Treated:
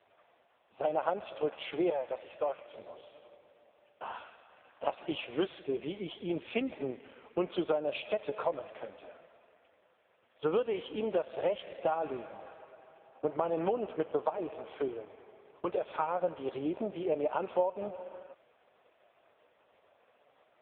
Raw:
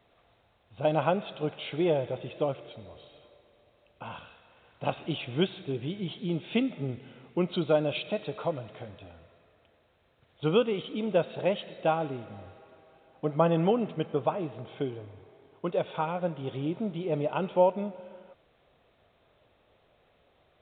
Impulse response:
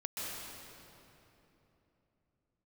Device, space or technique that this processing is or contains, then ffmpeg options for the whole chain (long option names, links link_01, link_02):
voicemail: -filter_complex "[0:a]asettb=1/sr,asplit=3[link_01][link_02][link_03];[link_01]atrim=end=1.904[link_04];[link_02]atrim=start=1.9:end=2.73,asetpts=PTS-STARTPTS,afade=type=in:duration=0.004:curve=qsin,afade=type=out:start_time=0.826:duration=0.004:curve=qsin,acrossover=split=550 3600:gain=0.112 1 0.126[link_05][link_06][link_07];[link_05][link_06][link_07]amix=inputs=3:normalize=0[link_08];[link_03]atrim=start=2.726[link_09];[link_04][link_08]acrossfade=duration=0.004:curve1=hsin:curve2=qsin[link_10];[link_10][link_09]acrossfade=duration=0.004:curve1=qsin:curve2=hsin,highpass=430,lowpass=2900,acompressor=threshold=-31dB:ratio=8,volume=5.5dB" -ar 8000 -c:a libopencore_amrnb -b:a 4750